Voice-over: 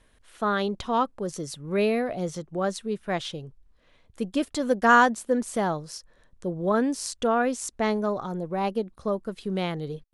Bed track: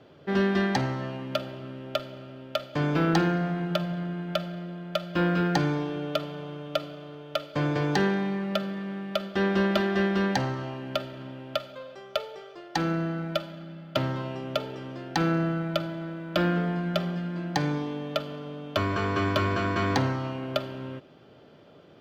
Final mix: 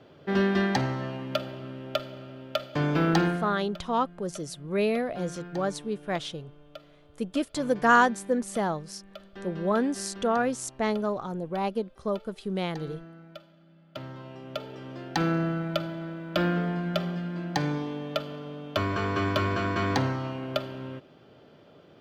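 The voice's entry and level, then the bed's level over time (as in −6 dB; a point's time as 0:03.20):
3.00 s, −2.0 dB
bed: 0:03.25 0 dB
0:03.75 −17 dB
0:13.61 −17 dB
0:15.02 −1 dB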